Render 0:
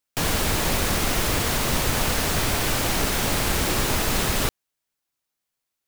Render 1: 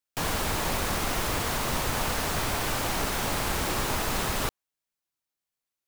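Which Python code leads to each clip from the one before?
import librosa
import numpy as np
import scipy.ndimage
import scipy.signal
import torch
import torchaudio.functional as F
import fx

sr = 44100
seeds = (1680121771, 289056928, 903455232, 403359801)

y = fx.dynamic_eq(x, sr, hz=980.0, q=1.0, threshold_db=-42.0, ratio=4.0, max_db=5)
y = y * librosa.db_to_amplitude(-6.5)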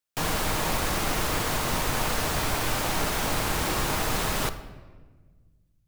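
y = fx.room_shoebox(x, sr, seeds[0], volume_m3=1300.0, walls='mixed', distance_m=0.52)
y = y * librosa.db_to_amplitude(1.0)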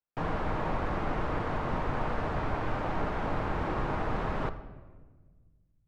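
y = scipy.signal.sosfilt(scipy.signal.butter(2, 1400.0, 'lowpass', fs=sr, output='sos'), x)
y = y * librosa.db_to_amplitude(-2.5)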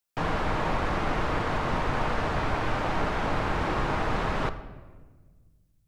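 y = fx.high_shelf(x, sr, hz=2300.0, db=10.5)
y = y * librosa.db_to_amplitude(3.0)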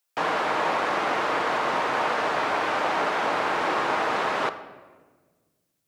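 y = scipy.signal.sosfilt(scipy.signal.butter(2, 410.0, 'highpass', fs=sr, output='sos'), x)
y = y * librosa.db_to_amplitude(5.5)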